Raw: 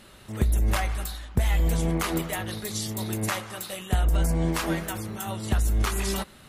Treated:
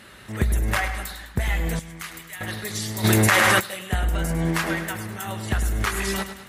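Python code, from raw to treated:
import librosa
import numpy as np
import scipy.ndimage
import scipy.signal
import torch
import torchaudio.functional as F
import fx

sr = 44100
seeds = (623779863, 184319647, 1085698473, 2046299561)

y = scipy.signal.sosfilt(scipy.signal.butter(2, 49.0, 'highpass', fs=sr, output='sos'), x)
y = fx.peak_eq(y, sr, hz=1800.0, db=8.0, octaves=0.82)
y = fx.echo_feedback(y, sr, ms=103, feedback_pct=49, wet_db=-11.0)
y = fx.rider(y, sr, range_db=4, speed_s=2.0)
y = fx.tone_stack(y, sr, knobs='5-5-5', at=(1.79, 2.41))
y = fx.env_flatten(y, sr, amount_pct=100, at=(3.03, 3.59), fade=0.02)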